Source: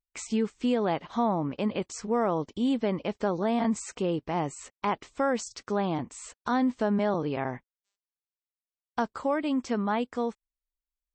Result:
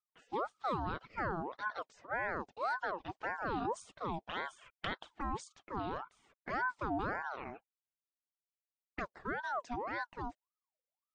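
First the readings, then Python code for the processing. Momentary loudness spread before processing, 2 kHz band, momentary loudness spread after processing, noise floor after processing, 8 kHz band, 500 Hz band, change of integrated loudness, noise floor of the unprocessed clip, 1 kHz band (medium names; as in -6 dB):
7 LU, 0.0 dB, 9 LU, under -85 dBFS, -17.5 dB, -13.5 dB, -10.0 dB, under -85 dBFS, -6.0 dB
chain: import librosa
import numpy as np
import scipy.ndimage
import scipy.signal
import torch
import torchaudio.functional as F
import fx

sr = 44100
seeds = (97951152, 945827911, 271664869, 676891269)

y = fx.spec_box(x, sr, start_s=4.29, length_s=0.83, low_hz=1400.0, high_hz=2800.0, gain_db=12)
y = fx.env_lowpass(y, sr, base_hz=1100.0, full_db=-23.0)
y = fx.env_flanger(y, sr, rest_ms=4.1, full_db=-23.0)
y = fx.ring_lfo(y, sr, carrier_hz=880.0, swing_pct=45, hz=1.8)
y = F.gain(torch.from_numpy(y), -6.5).numpy()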